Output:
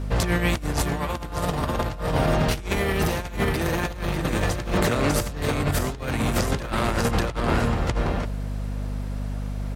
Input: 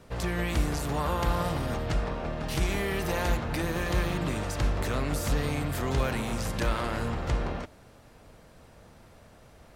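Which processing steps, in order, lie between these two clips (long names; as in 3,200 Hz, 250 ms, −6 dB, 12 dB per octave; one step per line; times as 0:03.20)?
single-tap delay 598 ms −3.5 dB
mains hum 50 Hz, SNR 11 dB
compressor whose output falls as the input rises −30 dBFS, ratio −0.5
level +7 dB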